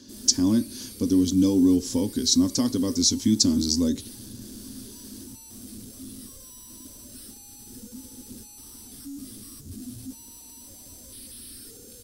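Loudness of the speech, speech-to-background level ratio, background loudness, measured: -22.0 LUFS, 19.5 dB, -41.5 LUFS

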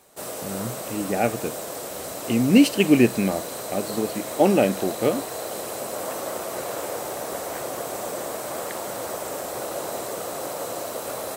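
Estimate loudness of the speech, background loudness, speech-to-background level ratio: -22.0 LUFS, -31.0 LUFS, 9.0 dB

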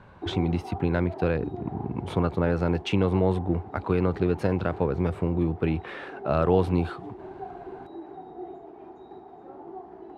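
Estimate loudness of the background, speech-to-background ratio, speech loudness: -41.0 LUFS, 14.5 dB, -26.5 LUFS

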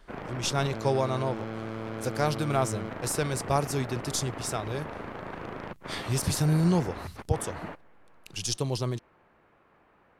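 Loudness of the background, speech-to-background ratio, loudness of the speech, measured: -38.5 LUFS, 8.5 dB, -30.0 LUFS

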